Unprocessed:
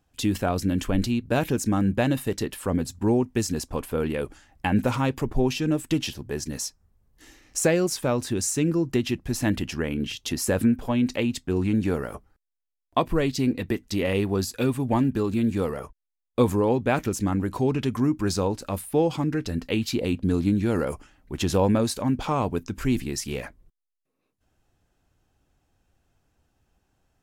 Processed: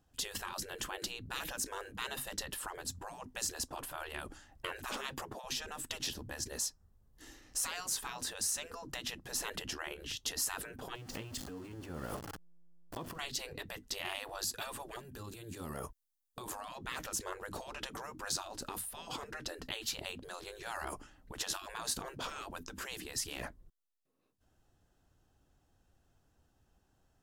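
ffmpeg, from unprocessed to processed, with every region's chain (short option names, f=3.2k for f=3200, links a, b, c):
-filter_complex "[0:a]asettb=1/sr,asplit=3[a][b][c];[a]atrim=end=10.954[d];[b]atrim=start=10.95:end=13.19,asetpts=PTS-STARTPTS,afade=t=in:d=0.004:c=qsin,afade=t=out:st=2.236:d=0.004:c=qsin,aeval=exprs='val(0)+0.5*0.0224*sgn(val(0))':c=same,acompressor=threshold=-32dB:ratio=12:attack=3.2:release=140:knee=1:detection=peak,bandreject=f=3.8k:w=12[e];[c]atrim=start=13.186[f];[d][e]acrossfade=d=0.004:c1=hsin:c2=qsin[g];[g][f]acrossfade=d=0.004:c1=qsin:c2=hsin,asettb=1/sr,asplit=3[h][i][j];[h]atrim=end=14.964[k];[i]atrim=start=14.96:end=16.48,asetpts=PTS-STARTPTS,afade=t=in:d=0.004:c=qsin,afade=t=out:st=1.516:d=0.004:c=qsin,highshelf=f=5.2k:g=12,acompressor=threshold=-32dB:ratio=6:attack=3.2:release=140:knee=1:detection=peak[l];[j]atrim=start=16.476[m];[k][l]acrossfade=d=0.004:c1=hsin:c2=qsin[n];[n][m]acrossfade=d=0.004:c1=qsin:c2=hsin,afftfilt=real='re*lt(hypot(re,im),0.0891)':imag='im*lt(hypot(re,im),0.0891)':win_size=1024:overlap=0.75,equalizer=f=2.3k:t=o:w=0.32:g=-7.5,volume=-2.5dB"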